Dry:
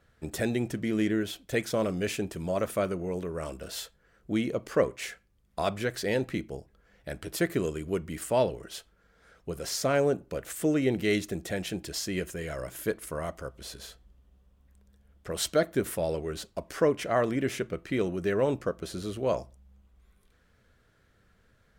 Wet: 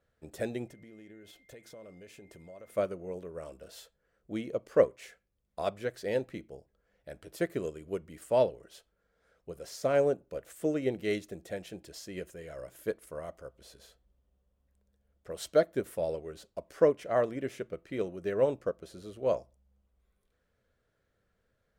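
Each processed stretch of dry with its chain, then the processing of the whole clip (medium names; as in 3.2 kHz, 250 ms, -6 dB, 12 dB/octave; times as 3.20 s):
0.68–2.76 s: compression 10:1, threshold -37 dBFS + whistle 2.1 kHz -52 dBFS
whole clip: peaking EQ 540 Hz +7 dB 0.85 oct; upward expansion 1.5:1, over -32 dBFS; trim -3.5 dB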